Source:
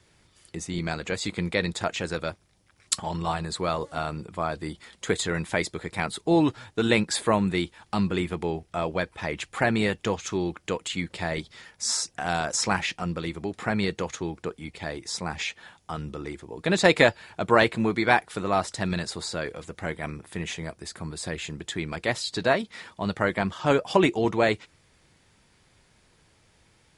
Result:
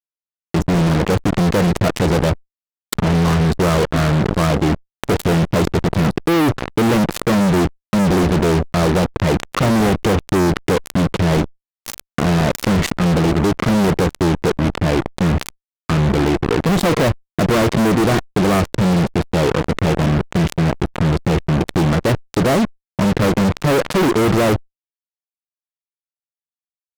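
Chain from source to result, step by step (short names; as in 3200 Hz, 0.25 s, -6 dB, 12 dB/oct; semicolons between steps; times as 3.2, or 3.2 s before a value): running mean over 54 samples; fuzz box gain 49 dB, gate -45 dBFS; fast leveller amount 50%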